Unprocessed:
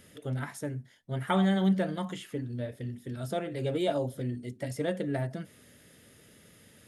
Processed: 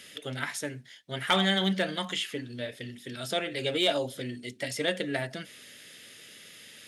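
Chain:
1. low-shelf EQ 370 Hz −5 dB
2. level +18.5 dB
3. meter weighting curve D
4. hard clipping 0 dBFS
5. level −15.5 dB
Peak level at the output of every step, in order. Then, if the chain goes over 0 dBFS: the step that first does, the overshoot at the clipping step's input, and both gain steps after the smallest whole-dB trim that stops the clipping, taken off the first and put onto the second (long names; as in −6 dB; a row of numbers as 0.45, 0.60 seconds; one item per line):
−15.0, +3.5, +7.0, 0.0, −15.5 dBFS
step 2, 7.0 dB
step 2 +11.5 dB, step 5 −8.5 dB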